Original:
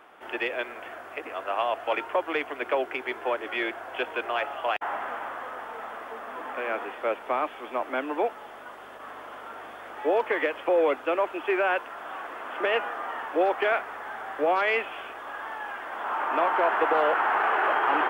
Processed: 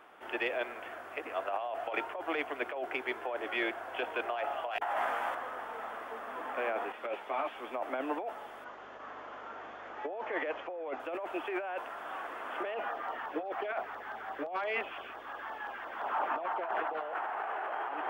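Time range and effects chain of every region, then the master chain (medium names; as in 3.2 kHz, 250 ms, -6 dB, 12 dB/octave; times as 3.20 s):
4.71–5.35 s: treble shelf 2.3 kHz +8 dB + hum notches 60/120/180/240/300/360/420/480 Hz + doubling 17 ms -5.5 dB
6.92–7.56 s: dynamic bell 3.2 kHz, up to +6 dB, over -46 dBFS, Q 0.77 + three-phase chorus
8.64–11.00 s: treble shelf 4.5 kHz -7.5 dB + careless resampling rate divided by 3×, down none, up filtered
12.74–17.02 s: peaking EQ 9.3 kHz -11.5 dB 0.87 oct + LFO notch saw down 5.8 Hz 290–2900 Hz
whole clip: dynamic bell 700 Hz, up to +7 dB, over -39 dBFS, Q 2.3; compressor with a negative ratio -27 dBFS, ratio -1; trim -7.5 dB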